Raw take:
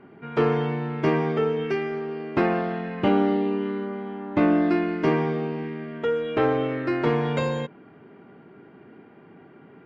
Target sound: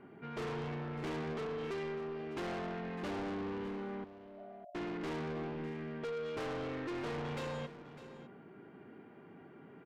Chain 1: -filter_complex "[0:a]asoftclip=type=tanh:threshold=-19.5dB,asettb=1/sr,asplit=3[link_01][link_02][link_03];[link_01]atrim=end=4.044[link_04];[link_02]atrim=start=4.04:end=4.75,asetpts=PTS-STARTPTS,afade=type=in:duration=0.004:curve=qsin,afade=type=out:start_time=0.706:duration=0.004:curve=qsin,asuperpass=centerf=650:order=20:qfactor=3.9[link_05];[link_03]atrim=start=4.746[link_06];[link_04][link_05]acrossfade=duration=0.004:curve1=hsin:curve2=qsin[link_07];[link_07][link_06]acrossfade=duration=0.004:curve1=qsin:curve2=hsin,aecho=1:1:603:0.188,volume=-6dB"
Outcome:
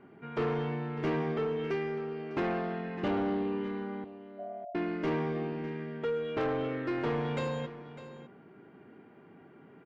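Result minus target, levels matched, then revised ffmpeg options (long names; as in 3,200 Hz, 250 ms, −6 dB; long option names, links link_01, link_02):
soft clipping: distortion −8 dB
-filter_complex "[0:a]asoftclip=type=tanh:threshold=-31.5dB,asettb=1/sr,asplit=3[link_01][link_02][link_03];[link_01]atrim=end=4.044[link_04];[link_02]atrim=start=4.04:end=4.75,asetpts=PTS-STARTPTS,afade=type=in:duration=0.004:curve=qsin,afade=type=out:start_time=0.706:duration=0.004:curve=qsin,asuperpass=centerf=650:order=20:qfactor=3.9[link_05];[link_03]atrim=start=4.746[link_06];[link_04][link_05]acrossfade=duration=0.004:curve1=hsin:curve2=qsin[link_07];[link_07][link_06]acrossfade=duration=0.004:curve1=qsin:curve2=hsin,aecho=1:1:603:0.188,volume=-6dB"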